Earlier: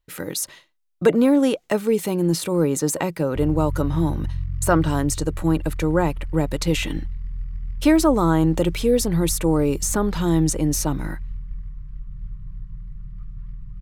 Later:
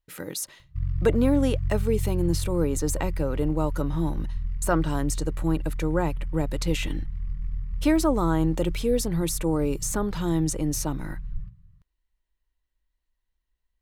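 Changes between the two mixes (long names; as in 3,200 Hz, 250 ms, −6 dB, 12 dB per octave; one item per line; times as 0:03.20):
speech −5.5 dB
background: entry −2.60 s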